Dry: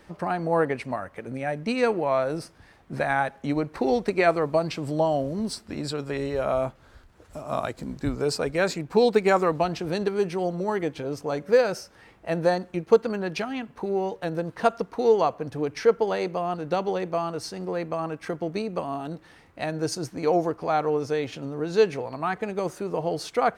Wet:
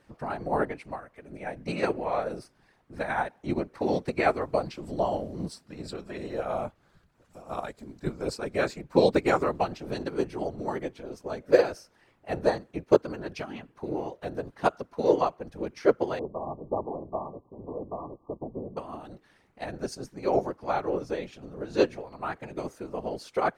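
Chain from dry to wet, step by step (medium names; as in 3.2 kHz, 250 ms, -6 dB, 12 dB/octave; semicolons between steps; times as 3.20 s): whisper effect; 16.19–18.77 s: brick-wall FIR low-pass 1.2 kHz; upward expansion 1.5:1, over -33 dBFS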